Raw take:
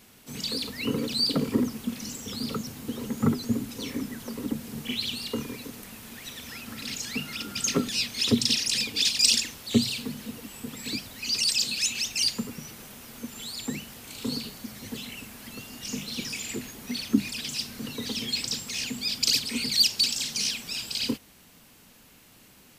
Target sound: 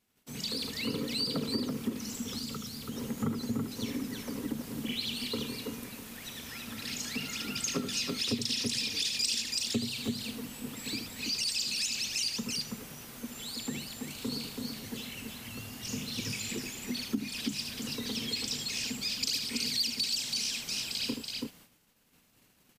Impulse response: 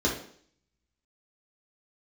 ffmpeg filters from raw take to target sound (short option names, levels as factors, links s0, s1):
-filter_complex "[0:a]aecho=1:1:76|330:0.355|0.562,acompressor=threshold=0.0447:ratio=2.5,asettb=1/sr,asplit=3[s0][s1][s2];[s0]atrim=end=2.394[s3];[s1]atrim=start=2.39:end=2.92,asetpts=PTS-STARTPTS,afade=t=in:d=0.004:c=qsin,afade=t=out:st=0.526:d=0.004:c=qsin,equalizer=f=500:w=0.38:g=-7[s4];[s2]atrim=start=2.916[s5];[s3][s4]acrossfade=d=0.004:c1=hsin:c2=qsin[s6];[s6][s5]acrossfade=d=0.004:c1=qsin:c2=hsin,agate=range=0.112:threshold=0.00282:ratio=16:detection=peak,asettb=1/sr,asplit=3[s7][s8][s9];[s7]atrim=end=15.384[s10];[s8]atrim=start=15.38:end=16.49,asetpts=PTS-STARTPTS,afade=t=in:d=0.004:c=qsin,afade=t=out:st=1.106:d=0.004:c=qsin,equalizer=f=110:w=4.4:g=14[s11];[s9]atrim=start=16.486[s12];[s10][s11]acrossfade=d=0.004:c1=hsin:c2=qsin[s13];[s13][s12]acrossfade=d=0.004:c1=qsin:c2=hsin,volume=0.668"